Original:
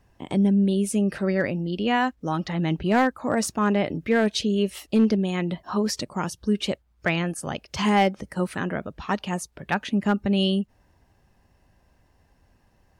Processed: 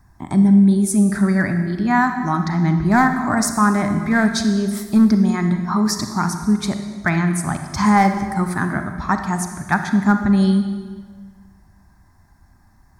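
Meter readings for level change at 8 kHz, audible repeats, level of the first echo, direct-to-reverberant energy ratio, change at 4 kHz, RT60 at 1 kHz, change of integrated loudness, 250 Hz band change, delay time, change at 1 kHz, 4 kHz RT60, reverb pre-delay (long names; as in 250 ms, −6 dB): +8.0 dB, no echo audible, no echo audible, 6.5 dB, −0.5 dB, 1.5 s, +6.5 dB, +7.5 dB, no echo audible, +7.5 dB, 1.3 s, 33 ms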